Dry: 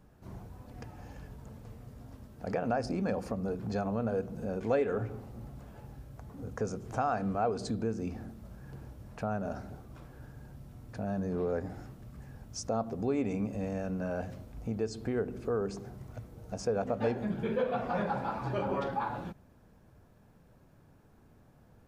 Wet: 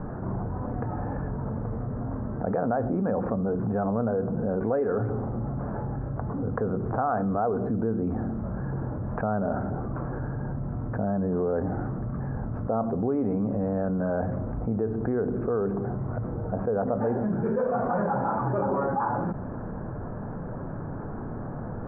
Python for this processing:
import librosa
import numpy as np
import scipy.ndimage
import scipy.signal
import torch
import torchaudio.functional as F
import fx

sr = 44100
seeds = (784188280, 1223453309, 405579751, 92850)

y = scipy.signal.sosfilt(scipy.signal.butter(6, 1500.0, 'lowpass', fs=sr, output='sos'), x)
y = fx.peak_eq(y, sr, hz=62.0, db=-14.0, octaves=0.43)
y = fx.env_flatten(y, sr, amount_pct=70)
y = F.gain(torch.from_numpy(y), 1.5).numpy()